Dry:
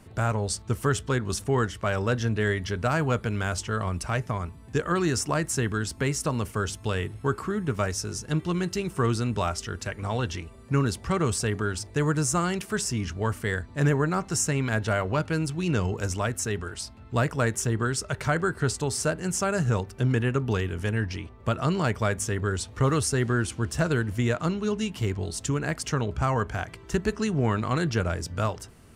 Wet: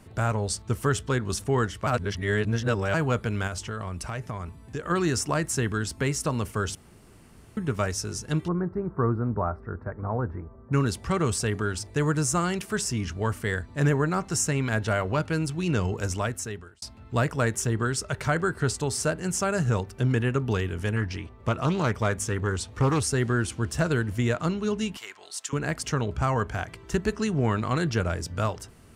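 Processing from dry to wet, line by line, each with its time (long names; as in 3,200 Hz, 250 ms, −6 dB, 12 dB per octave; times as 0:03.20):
0:01.87–0:02.94: reverse
0:03.47–0:04.90: downward compressor 3 to 1, threshold −30 dBFS
0:06.75–0:07.57: fill with room tone
0:08.48–0:10.73: inverse Chebyshev low-pass filter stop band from 2,800 Hz
0:16.20–0:16.82: fade out
0:20.96–0:23.09: highs frequency-modulated by the lows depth 0.32 ms
0:24.97–0:25.53: Chebyshev high-pass filter 1,200 Hz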